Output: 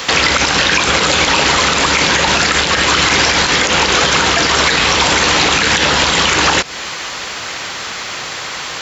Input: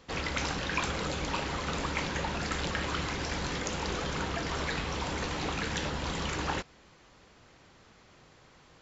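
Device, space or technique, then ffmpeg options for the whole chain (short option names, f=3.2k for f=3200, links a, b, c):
mastering chain: -filter_complex "[0:a]highpass=48,equalizer=f=500:t=o:w=2.7:g=2.5,acrossover=split=540|4200[a][b][c];[a]acompressor=threshold=-36dB:ratio=4[d];[b]acompressor=threshold=-43dB:ratio=4[e];[c]acompressor=threshold=-54dB:ratio=4[f];[d][e][f]amix=inputs=3:normalize=0,acompressor=threshold=-39dB:ratio=2,tiltshelf=f=780:g=-10,alimiter=level_in=30.5dB:limit=-1dB:release=50:level=0:latency=1,volume=-1dB"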